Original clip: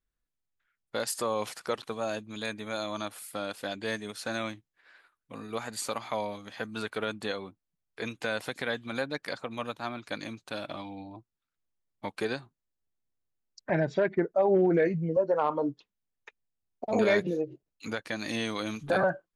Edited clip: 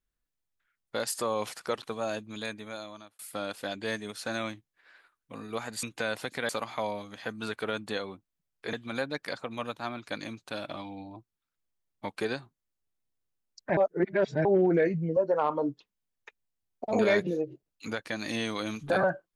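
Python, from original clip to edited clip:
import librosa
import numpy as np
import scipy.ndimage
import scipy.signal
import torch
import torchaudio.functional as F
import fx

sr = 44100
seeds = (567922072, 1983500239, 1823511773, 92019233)

y = fx.edit(x, sr, fx.fade_out_span(start_s=2.33, length_s=0.86),
    fx.move(start_s=8.07, length_s=0.66, to_s=5.83),
    fx.reverse_span(start_s=13.77, length_s=0.68), tone=tone)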